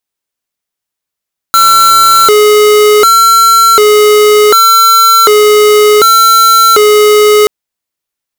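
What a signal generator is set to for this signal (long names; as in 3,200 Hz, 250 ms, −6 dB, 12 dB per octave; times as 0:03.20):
siren hi-lo 421–1,350 Hz 0.67 per second square −4.5 dBFS 5.93 s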